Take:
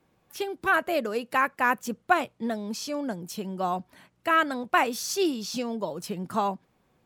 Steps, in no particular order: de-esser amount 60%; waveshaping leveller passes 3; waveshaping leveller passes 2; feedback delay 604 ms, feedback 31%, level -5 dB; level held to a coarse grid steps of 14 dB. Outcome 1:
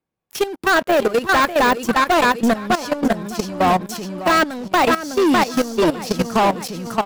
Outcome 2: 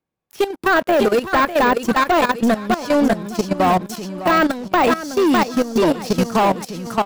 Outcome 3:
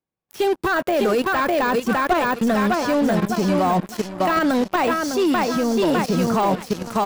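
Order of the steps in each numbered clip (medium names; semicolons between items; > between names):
second waveshaping leveller > feedback delay > de-esser > first waveshaping leveller > level held to a coarse grid; first waveshaping leveller > feedback delay > de-esser > second waveshaping leveller > level held to a coarse grid; feedback delay > second waveshaping leveller > level held to a coarse grid > first waveshaping leveller > de-esser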